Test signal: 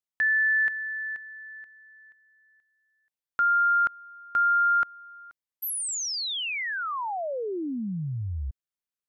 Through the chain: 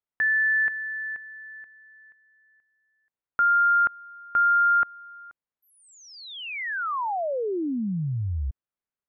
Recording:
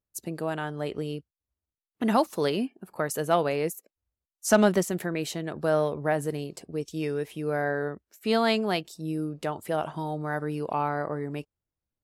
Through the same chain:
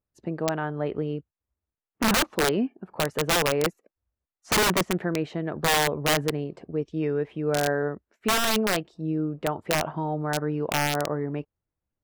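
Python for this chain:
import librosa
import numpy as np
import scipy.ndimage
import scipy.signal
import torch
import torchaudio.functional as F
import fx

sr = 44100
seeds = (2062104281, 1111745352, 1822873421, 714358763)

y = scipy.signal.sosfilt(scipy.signal.butter(2, 1800.0, 'lowpass', fs=sr, output='sos'), x)
y = (np.mod(10.0 ** (19.5 / 20.0) * y + 1.0, 2.0) - 1.0) / 10.0 ** (19.5 / 20.0)
y = F.gain(torch.from_numpy(y), 3.5).numpy()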